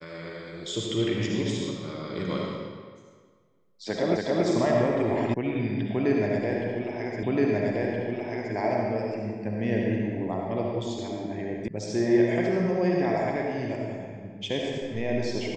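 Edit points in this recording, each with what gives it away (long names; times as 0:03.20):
0:04.17: the same again, the last 0.28 s
0:05.34: cut off before it has died away
0:07.23: the same again, the last 1.32 s
0:11.68: cut off before it has died away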